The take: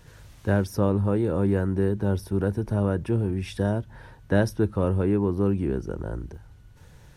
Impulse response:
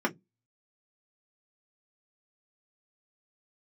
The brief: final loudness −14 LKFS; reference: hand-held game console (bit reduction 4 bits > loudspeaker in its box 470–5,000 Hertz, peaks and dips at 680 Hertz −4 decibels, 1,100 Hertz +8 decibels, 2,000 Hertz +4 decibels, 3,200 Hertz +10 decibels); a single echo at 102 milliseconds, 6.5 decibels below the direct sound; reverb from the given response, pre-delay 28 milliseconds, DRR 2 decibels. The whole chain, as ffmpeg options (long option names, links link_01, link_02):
-filter_complex "[0:a]aecho=1:1:102:0.473,asplit=2[link_01][link_02];[1:a]atrim=start_sample=2205,adelay=28[link_03];[link_02][link_03]afir=irnorm=-1:irlink=0,volume=-12dB[link_04];[link_01][link_04]amix=inputs=2:normalize=0,acrusher=bits=3:mix=0:aa=0.000001,highpass=470,equalizer=frequency=680:width_type=q:width=4:gain=-4,equalizer=frequency=1100:width_type=q:width=4:gain=8,equalizer=frequency=2000:width_type=q:width=4:gain=4,equalizer=frequency=3200:width_type=q:width=4:gain=10,lowpass=frequency=5000:width=0.5412,lowpass=frequency=5000:width=1.3066,volume=9dB"